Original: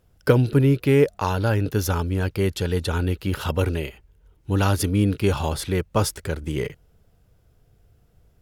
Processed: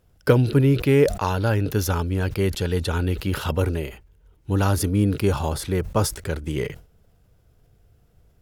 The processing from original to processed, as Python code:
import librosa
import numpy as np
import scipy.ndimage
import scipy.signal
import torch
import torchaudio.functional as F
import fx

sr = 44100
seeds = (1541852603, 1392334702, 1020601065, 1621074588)

y = fx.dynamic_eq(x, sr, hz=2900.0, q=1.0, threshold_db=-43.0, ratio=4.0, max_db=-5, at=(3.56, 6.16))
y = fx.sustainer(y, sr, db_per_s=130.0)